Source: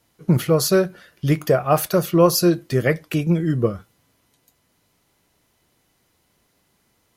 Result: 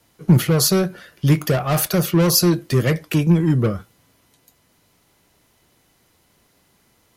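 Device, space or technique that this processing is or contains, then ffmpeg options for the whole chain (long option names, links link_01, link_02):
one-band saturation: -filter_complex "[0:a]acrossover=split=240|3400[link_01][link_02][link_03];[link_02]asoftclip=type=tanh:threshold=-24.5dB[link_04];[link_01][link_04][link_03]amix=inputs=3:normalize=0,volume=5dB"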